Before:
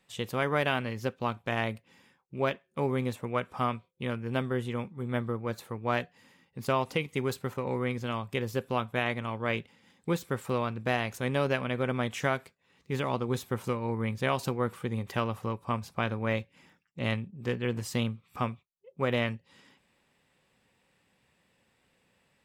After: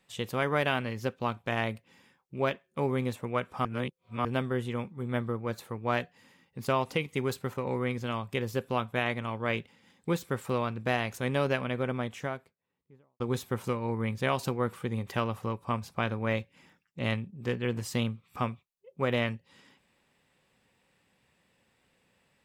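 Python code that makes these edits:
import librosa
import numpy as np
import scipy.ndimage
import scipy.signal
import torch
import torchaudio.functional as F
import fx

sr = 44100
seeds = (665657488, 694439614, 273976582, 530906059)

y = fx.studio_fade_out(x, sr, start_s=11.47, length_s=1.73)
y = fx.edit(y, sr, fx.reverse_span(start_s=3.65, length_s=0.6), tone=tone)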